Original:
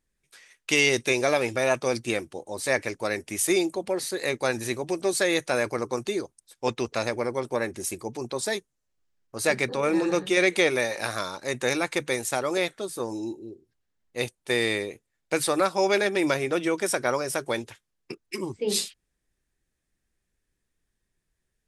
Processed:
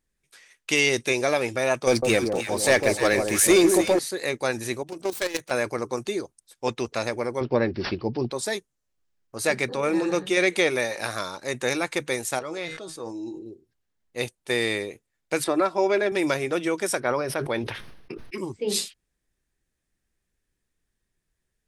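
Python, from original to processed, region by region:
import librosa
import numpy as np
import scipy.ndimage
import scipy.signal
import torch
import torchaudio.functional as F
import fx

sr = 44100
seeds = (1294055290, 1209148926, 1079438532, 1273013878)

y = fx.chain(x, sr, fx.leveller(passes=2),
    fx.echo_alternate(ms=153, hz=1100.0, feedback_pct=68, wet_db=-5), at=(1.87, 3.99))
y = fx.chain(y, sr, fx.self_delay(depth_ms=0.21),
    fx.level_steps(step_db=12), at=(4.83, 5.51))
y = fx.chain(y, sr, fx.low_shelf(hz=460.0, db=11.0),
    fx.resample_bad(factor=4, down='none', up='filtered'), at=(7.41, 8.31))
y = fx.chain(y, sr, fx.lowpass(hz=6700.0, slope=12),
    fx.comb_fb(f0_hz=160.0, decay_s=0.18, harmonics='all', damping=0.0, mix_pct=70),
    fx.sustainer(db_per_s=41.0), at=(12.39, 13.46))
y = fx.chain(y, sr, fx.lowpass(hz=1700.0, slope=6),
    fx.comb(ms=3.0, depth=0.45),
    fx.band_squash(depth_pct=40), at=(15.44, 16.12))
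y = fx.chain(y, sr, fx.moving_average(points=6),
    fx.sustainer(db_per_s=45.0), at=(17.0, 18.38))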